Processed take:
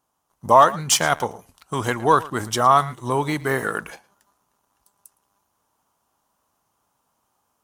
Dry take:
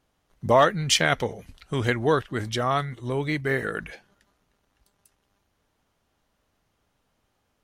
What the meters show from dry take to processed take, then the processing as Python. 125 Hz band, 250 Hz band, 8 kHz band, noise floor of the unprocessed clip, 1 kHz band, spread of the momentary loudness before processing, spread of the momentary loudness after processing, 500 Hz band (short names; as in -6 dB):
-1.0 dB, +1.0 dB, +7.0 dB, -73 dBFS, +9.0 dB, 13 LU, 14 LU, +2.0 dB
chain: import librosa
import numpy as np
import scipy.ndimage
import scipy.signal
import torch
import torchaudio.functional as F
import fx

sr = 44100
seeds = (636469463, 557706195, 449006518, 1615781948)

p1 = fx.rider(x, sr, range_db=10, speed_s=0.5)
p2 = x + (p1 * 10.0 ** (1.0 / 20.0))
p3 = fx.highpass(p2, sr, hz=150.0, slope=6)
p4 = fx.high_shelf(p3, sr, hz=2600.0, db=11.0)
p5 = p4 + fx.echo_single(p4, sr, ms=112, db=-19.0, dry=0)
p6 = fx.leveller(p5, sr, passes=1)
p7 = fx.graphic_eq_10(p6, sr, hz=(500, 1000, 2000, 4000), db=(-3, 11, -9, -8))
y = p7 * 10.0 ** (-7.5 / 20.0)